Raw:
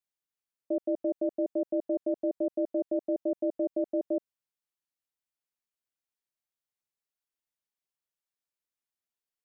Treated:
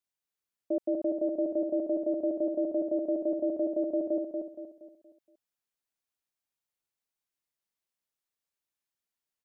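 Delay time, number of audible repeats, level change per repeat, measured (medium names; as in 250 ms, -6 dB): 235 ms, 4, -7.5 dB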